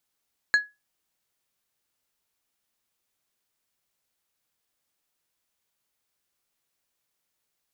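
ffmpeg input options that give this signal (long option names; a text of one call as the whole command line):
ffmpeg -f lavfi -i "aevalsrc='0.237*pow(10,-3*t/0.22)*sin(2*PI*1680*t)+0.0668*pow(10,-3*t/0.116)*sin(2*PI*4200*t)+0.0188*pow(10,-3*t/0.083)*sin(2*PI*6720*t)+0.00531*pow(10,-3*t/0.071)*sin(2*PI*8400*t)+0.0015*pow(10,-3*t/0.059)*sin(2*PI*10920*t)':duration=0.89:sample_rate=44100" out.wav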